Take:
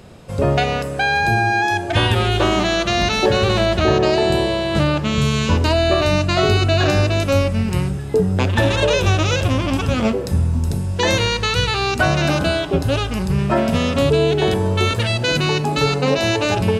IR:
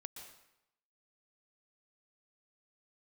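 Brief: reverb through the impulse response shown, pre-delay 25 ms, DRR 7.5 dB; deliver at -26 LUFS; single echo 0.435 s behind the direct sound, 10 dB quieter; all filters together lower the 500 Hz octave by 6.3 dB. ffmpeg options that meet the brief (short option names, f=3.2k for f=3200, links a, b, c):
-filter_complex "[0:a]equalizer=f=500:t=o:g=-8.5,aecho=1:1:435:0.316,asplit=2[a][b];[1:a]atrim=start_sample=2205,adelay=25[c];[b][c]afir=irnorm=-1:irlink=0,volume=-3dB[d];[a][d]amix=inputs=2:normalize=0,volume=-7.5dB"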